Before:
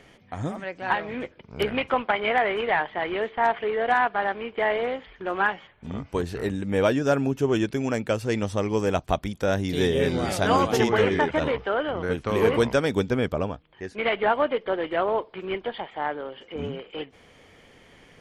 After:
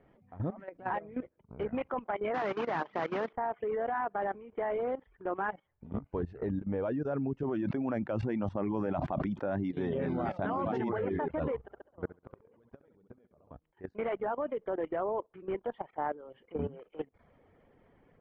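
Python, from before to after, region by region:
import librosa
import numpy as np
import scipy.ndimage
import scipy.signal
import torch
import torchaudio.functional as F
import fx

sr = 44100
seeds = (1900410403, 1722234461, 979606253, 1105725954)

y = fx.chain(x, sr, fx.cvsd(bps=32000),
    fx.highpass(hz=170.0, slope=24),
    fx.spectral_comp(ratio=2.0), at=(2.34, 3.33))
y = fx.chain(y, sr, fx.bandpass_edges(low_hz=140.0, high_hz=7000.0),
    fx.peak_eq(hz=450.0, db=-10.5, octaves=0.29),
    fx.sustainer(db_per_s=30.0), at=(7.43, 10.93))
y = fx.chain(y, sr, fx.gate_flip(shuts_db=-17.0, range_db=-30),
    fx.room_flutter(wall_m=11.6, rt60_s=0.69), at=(11.57, 13.51))
y = fx.dereverb_blind(y, sr, rt60_s=0.56)
y = scipy.signal.sosfilt(scipy.signal.butter(2, 1100.0, 'lowpass', fs=sr, output='sos'), y)
y = fx.level_steps(y, sr, step_db=16)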